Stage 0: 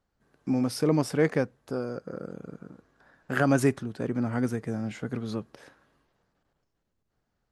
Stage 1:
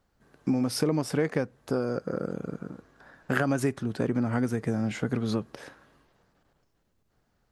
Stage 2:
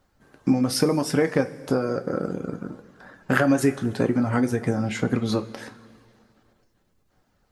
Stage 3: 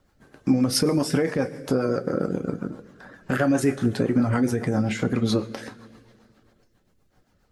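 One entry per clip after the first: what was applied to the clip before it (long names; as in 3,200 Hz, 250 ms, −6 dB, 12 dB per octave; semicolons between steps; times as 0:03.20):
downward compressor 6 to 1, threshold −29 dBFS, peak gain reduction 12 dB; level +6.5 dB
reverb reduction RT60 0.57 s; coupled-rooms reverb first 0.21 s, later 2.2 s, from −19 dB, DRR 5.5 dB; level +5.5 dB
brickwall limiter −14 dBFS, peak gain reduction 9 dB; rotating-speaker cabinet horn 7.5 Hz; level +4 dB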